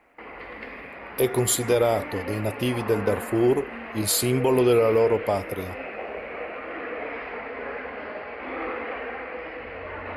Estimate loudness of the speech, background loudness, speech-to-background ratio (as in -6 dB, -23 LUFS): -23.0 LUFS, -34.5 LUFS, 11.5 dB